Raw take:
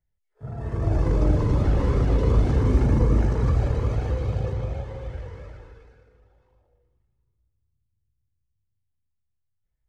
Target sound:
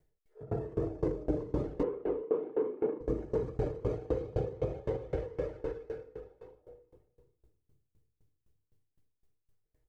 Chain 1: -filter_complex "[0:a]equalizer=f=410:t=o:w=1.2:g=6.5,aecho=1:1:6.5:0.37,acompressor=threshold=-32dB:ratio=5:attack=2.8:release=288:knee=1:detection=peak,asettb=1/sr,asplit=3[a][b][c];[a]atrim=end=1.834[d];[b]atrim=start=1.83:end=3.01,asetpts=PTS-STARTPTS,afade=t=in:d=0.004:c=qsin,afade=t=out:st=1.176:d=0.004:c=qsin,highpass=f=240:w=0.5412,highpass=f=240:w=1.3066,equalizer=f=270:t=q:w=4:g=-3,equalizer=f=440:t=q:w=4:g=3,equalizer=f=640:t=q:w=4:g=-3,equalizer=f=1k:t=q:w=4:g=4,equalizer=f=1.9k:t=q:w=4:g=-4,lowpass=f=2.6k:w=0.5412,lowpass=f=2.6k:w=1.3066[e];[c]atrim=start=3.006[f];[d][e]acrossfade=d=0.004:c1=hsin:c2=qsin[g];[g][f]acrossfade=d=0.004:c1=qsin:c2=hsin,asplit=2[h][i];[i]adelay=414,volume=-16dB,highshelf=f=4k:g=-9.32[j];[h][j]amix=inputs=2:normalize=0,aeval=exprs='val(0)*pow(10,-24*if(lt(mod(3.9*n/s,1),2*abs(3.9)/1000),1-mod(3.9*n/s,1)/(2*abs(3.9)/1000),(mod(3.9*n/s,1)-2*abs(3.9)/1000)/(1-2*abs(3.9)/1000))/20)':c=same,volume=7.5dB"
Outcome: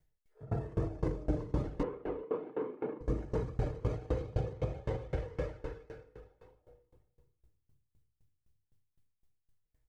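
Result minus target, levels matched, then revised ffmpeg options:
500 Hz band -3.0 dB
-filter_complex "[0:a]equalizer=f=410:t=o:w=1.2:g=17.5,aecho=1:1:6.5:0.37,acompressor=threshold=-32dB:ratio=5:attack=2.8:release=288:knee=1:detection=peak,asettb=1/sr,asplit=3[a][b][c];[a]atrim=end=1.834[d];[b]atrim=start=1.83:end=3.01,asetpts=PTS-STARTPTS,afade=t=in:d=0.004:c=qsin,afade=t=out:st=1.176:d=0.004:c=qsin,highpass=f=240:w=0.5412,highpass=f=240:w=1.3066,equalizer=f=270:t=q:w=4:g=-3,equalizer=f=440:t=q:w=4:g=3,equalizer=f=640:t=q:w=4:g=-3,equalizer=f=1k:t=q:w=4:g=4,equalizer=f=1.9k:t=q:w=4:g=-4,lowpass=f=2.6k:w=0.5412,lowpass=f=2.6k:w=1.3066[e];[c]atrim=start=3.006[f];[d][e]acrossfade=d=0.004:c1=hsin:c2=qsin[g];[g][f]acrossfade=d=0.004:c1=qsin:c2=hsin,asplit=2[h][i];[i]adelay=414,volume=-16dB,highshelf=f=4k:g=-9.32[j];[h][j]amix=inputs=2:normalize=0,aeval=exprs='val(0)*pow(10,-24*if(lt(mod(3.9*n/s,1),2*abs(3.9)/1000),1-mod(3.9*n/s,1)/(2*abs(3.9)/1000),(mod(3.9*n/s,1)-2*abs(3.9)/1000)/(1-2*abs(3.9)/1000))/20)':c=same,volume=7.5dB"

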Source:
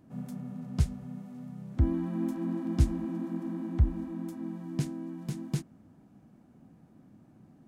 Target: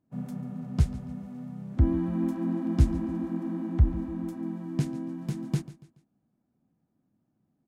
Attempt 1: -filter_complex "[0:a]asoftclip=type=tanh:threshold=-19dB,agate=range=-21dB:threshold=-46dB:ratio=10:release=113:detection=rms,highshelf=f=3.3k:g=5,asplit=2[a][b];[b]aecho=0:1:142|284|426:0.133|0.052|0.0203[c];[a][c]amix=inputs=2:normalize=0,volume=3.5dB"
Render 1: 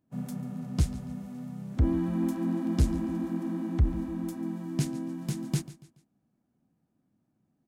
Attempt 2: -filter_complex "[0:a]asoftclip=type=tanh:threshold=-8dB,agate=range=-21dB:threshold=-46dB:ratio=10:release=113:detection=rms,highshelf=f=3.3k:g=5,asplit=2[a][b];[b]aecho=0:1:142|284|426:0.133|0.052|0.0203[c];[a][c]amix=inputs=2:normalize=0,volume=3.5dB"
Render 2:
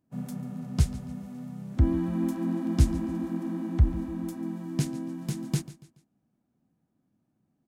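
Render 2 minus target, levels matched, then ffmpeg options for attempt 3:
8000 Hz band +9.0 dB
-filter_complex "[0:a]asoftclip=type=tanh:threshold=-8dB,agate=range=-21dB:threshold=-46dB:ratio=10:release=113:detection=rms,highshelf=f=3.3k:g=-5.5,asplit=2[a][b];[b]aecho=0:1:142|284|426:0.133|0.052|0.0203[c];[a][c]amix=inputs=2:normalize=0,volume=3.5dB"

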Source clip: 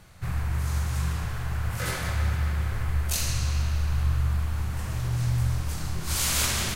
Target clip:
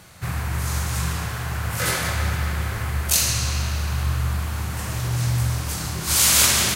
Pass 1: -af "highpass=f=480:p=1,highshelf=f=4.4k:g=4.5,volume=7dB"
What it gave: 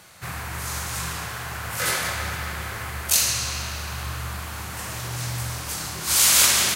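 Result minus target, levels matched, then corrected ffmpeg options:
125 Hz band -8.0 dB
-af "highpass=f=130:p=1,highshelf=f=4.4k:g=4.5,volume=7dB"

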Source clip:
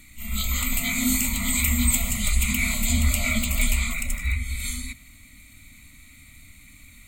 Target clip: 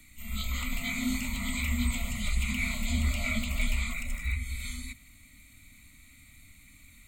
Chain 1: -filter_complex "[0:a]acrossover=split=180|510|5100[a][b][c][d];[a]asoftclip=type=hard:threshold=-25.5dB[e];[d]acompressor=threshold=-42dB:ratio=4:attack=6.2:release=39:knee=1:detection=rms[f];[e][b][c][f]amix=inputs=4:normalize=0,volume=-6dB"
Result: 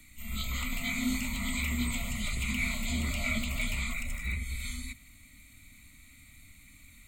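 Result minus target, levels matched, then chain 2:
hard clip: distortion +19 dB
-filter_complex "[0:a]acrossover=split=180|510|5100[a][b][c][d];[a]asoftclip=type=hard:threshold=-15dB[e];[d]acompressor=threshold=-42dB:ratio=4:attack=6.2:release=39:knee=1:detection=rms[f];[e][b][c][f]amix=inputs=4:normalize=0,volume=-6dB"

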